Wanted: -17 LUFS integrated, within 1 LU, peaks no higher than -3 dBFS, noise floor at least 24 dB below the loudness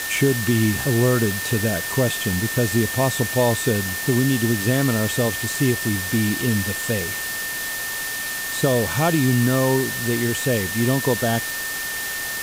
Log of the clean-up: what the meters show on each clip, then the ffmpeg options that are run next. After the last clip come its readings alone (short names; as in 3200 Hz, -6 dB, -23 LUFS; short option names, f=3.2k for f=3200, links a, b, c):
steady tone 1800 Hz; tone level -28 dBFS; noise floor -28 dBFS; noise floor target -45 dBFS; loudness -21.0 LUFS; peak -6.0 dBFS; loudness target -17.0 LUFS
-> -af "bandreject=f=1.8k:w=30"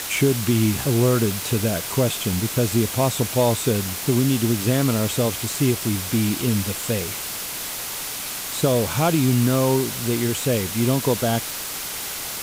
steady tone none; noise floor -30 dBFS; noise floor target -46 dBFS
-> -af "afftdn=nr=16:nf=-30"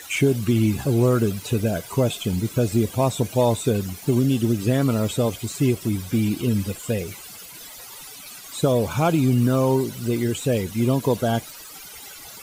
noise floor -41 dBFS; noise floor target -46 dBFS
-> -af "afftdn=nr=6:nf=-41"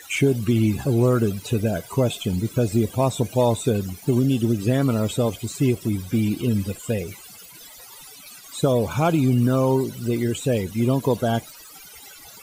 noise floor -44 dBFS; noise floor target -46 dBFS
-> -af "afftdn=nr=6:nf=-44"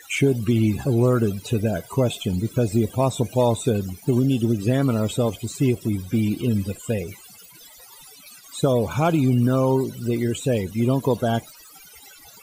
noise floor -47 dBFS; loudness -22.5 LUFS; peak -7.0 dBFS; loudness target -17.0 LUFS
-> -af "volume=5.5dB,alimiter=limit=-3dB:level=0:latency=1"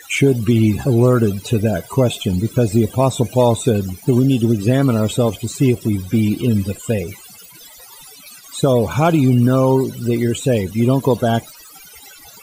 loudness -17.0 LUFS; peak -3.0 dBFS; noise floor -41 dBFS